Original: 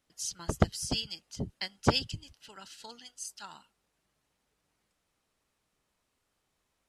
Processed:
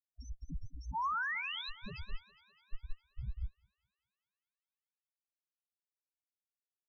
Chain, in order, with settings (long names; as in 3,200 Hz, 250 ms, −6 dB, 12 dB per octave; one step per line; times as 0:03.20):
loose part that buzzes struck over −19 dBFS, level −16 dBFS
high-pass filter 95 Hz 6 dB per octave
spectral tilt +2 dB per octave
sound drawn into the spectrogram rise, 0:00.94–0:01.70, 850–4,200 Hz −29 dBFS
mains hum 60 Hz, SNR 11 dB
comparator with hysteresis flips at −32.5 dBFS
spectral peaks only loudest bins 2
feedback echo with a high-pass in the loop 205 ms, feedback 68%, high-pass 240 Hz, level −13 dB
expander for the loud parts 1.5 to 1, over −56 dBFS
level +6 dB